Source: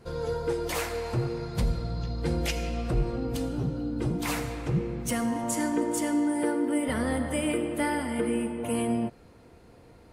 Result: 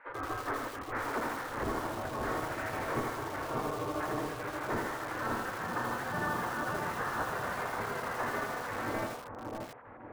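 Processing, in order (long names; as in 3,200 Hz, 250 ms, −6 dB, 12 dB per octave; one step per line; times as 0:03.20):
square-wave tremolo 6.6 Hz, depth 60%, duty 80%
gate on every frequency bin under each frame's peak −25 dB weak
0:03.50–0:04.45: comb filter 6.7 ms, depth 83%
in parallel at −1 dB: downward compressor 6 to 1, threshold −59 dBFS, peak gain reduction 21 dB
on the sum: sine wavefolder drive 12 dB, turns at −25 dBFS
dynamic equaliser 990 Hz, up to −3 dB, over −44 dBFS, Q 1.8
single-sideband voice off tune −290 Hz 340–2,000 Hz
bucket-brigade delay 581 ms, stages 4,096, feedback 44%, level −4 dB
feedback echo at a low word length 81 ms, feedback 55%, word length 7 bits, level −4 dB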